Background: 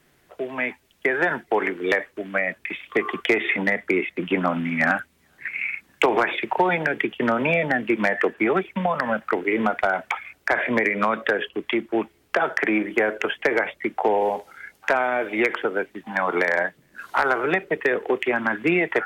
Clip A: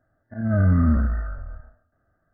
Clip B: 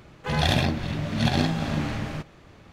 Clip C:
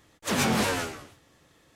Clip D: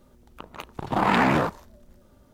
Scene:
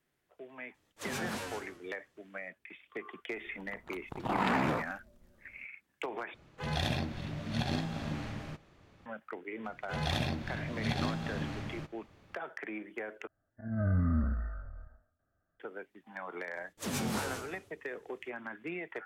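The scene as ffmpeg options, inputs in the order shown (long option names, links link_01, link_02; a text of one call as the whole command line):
ffmpeg -i bed.wav -i cue0.wav -i cue1.wav -i cue2.wav -i cue3.wav -filter_complex "[3:a]asplit=2[link_01][link_02];[2:a]asplit=2[link_03][link_04];[0:a]volume=-19.5dB[link_05];[link_02]equalizer=frequency=1500:width=0.32:gain=-6.5[link_06];[link_05]asplit=3[link_07][link_08][link_09];[link_07]atrim=end=6.344[link_10];[link_03]atrim=end=2.72,asetpts=PTS-STARTPTS,volume=-10.5dB[link_11];[link_08]atrim=start=9.056:end=13.274[link_12];[1:a]atrim=end=2.33,asetpts=PTS-STARTPTS,volume=-11dB[link_13];[link_09]atrim=start=15.596[link_14];[link_01]atrim=end=1.75,asetpts=PTS-STARTPTS,volume=-13.5dB,afade=type=in:duration=0.004:curve=hsin,afade=type=out:start_time=1.746:duration=0.004:curve=hsin,adelay=740[link_15];[4:a]atrim=end=2.33,asetpts=PTS-STARTPTS,volume=-9.5dB,afade=type=in:duration=0.004:curve=hsin,afade=type=out:start_time=2.326:duration=0.004:curve=hsin,adelay=146853S[link_16];[link_04]atrim=end=2.72,asetpts=PTS-STARTPTS,volume=-10.5dB,afade=type=in:duration=0.004:curve=hsin,afade=type=out:start_time=2.716:duration=0.004:curve=hsin,adelay=9640[link_17];[link_06]atrim=end=1.75,asetpts=PTS-STARTPTS,volume=-7dB,afade=type=in:duration=0.004:curve=hsin,afade=type=out:start_time=1.746:duration=0.004:curve=hsin,adelay=16550[link_18];[link_10][link_11]acrossfade=duration=0.004:curve1=hsin:curve2=hsin[link_19];[link_19][link_12]acrossfade=duration=0.004:curve1=hsin:curve2=hsin[link_20];[link_20][link_13]acrossfade=duration=0.004:curve1=hsin:curve2=hsin[link_21];[link_21][link_14]acrossfade=duration=0.004:curve1=hsin:curve2=hsin[link_22];[link_22][link_15][link_16][link_17][link_18]amix=inputs=5:normalize=0" out.wav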